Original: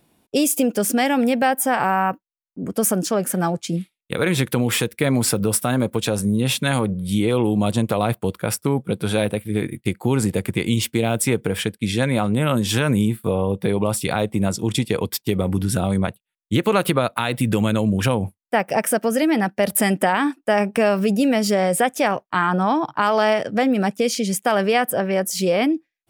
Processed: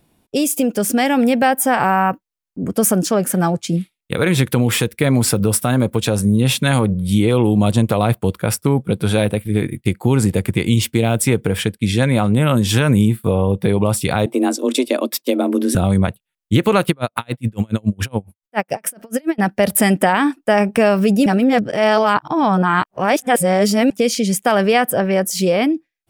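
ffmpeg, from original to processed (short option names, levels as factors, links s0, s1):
-filter_complex "[0:a]asettb=1/sr,asplit=3[s0][s1][s2];[s0]atrim=end=14.264[s3];[s1]atrim=start=14.26:end=15.75,asetpts=PTS-STARTPTS,afade=t=in:d=0.004:c=qsin,afade=t=out:st=1.486:d=0.004:c=qsin,afreqshift=130[s4];[s2]atrim=start=15.746[s5];[s3][s4]acrossfade=d=0.004:c1=hsin:c2=qsin[s6];[s6][s5]acrossfade=d=0.004:c1=qsin:c2=hsin,asplit=3[s7][s8][s9];[s7]afade=t=out:st=16.84:d=0.02[s10];[s8]aeval=exprs='val(0)*pow(10,-36*(0.5-0.5*cos(2*PI*7.1*n/s))/20)':c=same,afade=t=in:st=16.84:d=0.02,afade=t=out:st=19.38:d=0.02[s11];[s9]afade=t=in:st=19.38:d=0.02[s12];[s10][s11][s12]amix=inputs=3:normalize=0,asplit=3[s13][s14][s15];[s13]atrim=end=21.262[s16];[s14]atrim=start=21.258:end=23.902,asetpts=PTS-STARTPTS,areverse[s17];[s15]atrim=start=23.898[s18];[s16][s17]acrossfade=d=0.004:c1=hsin:c2=hsin[s19];[s19][s18]acrossfade=d=0.004:c1=hsin:c2=hsin,lowshelf=f=91:g=10.5,dynaudnorm=f=380:g=5:m=1.78"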